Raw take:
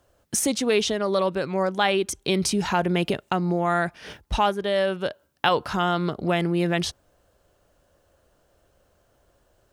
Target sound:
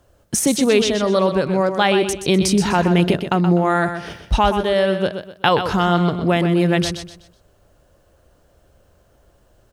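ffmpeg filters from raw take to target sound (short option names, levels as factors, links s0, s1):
-filter_complex "[0:a]lowshelf=f=290:g=6,asplit=2[s0][s1];[s1]aecho=0:1:125|250|375|500:0.376|0.124|0.0409|0.0135[s2];[s0][s2]amix=inputs=2:normalize=0,volume=1.58"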